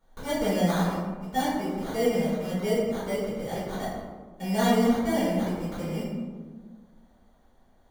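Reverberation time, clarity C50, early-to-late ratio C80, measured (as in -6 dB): 1.5 s, -0.5 dB, 1.5 dB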